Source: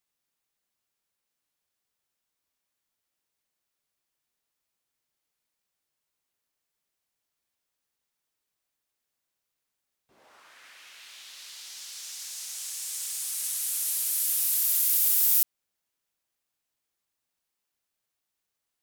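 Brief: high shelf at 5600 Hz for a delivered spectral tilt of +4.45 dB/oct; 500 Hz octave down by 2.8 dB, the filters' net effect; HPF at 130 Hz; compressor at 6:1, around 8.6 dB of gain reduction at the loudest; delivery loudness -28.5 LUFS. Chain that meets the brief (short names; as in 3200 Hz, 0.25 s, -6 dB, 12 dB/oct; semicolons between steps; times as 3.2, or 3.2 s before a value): HPF 130 Hz; bell 500 Hz -3.5 dB; high shelf 5600 Hz -7.5 dB; compressor 6:1, threshold -35 dBFS; gain +8.5 dB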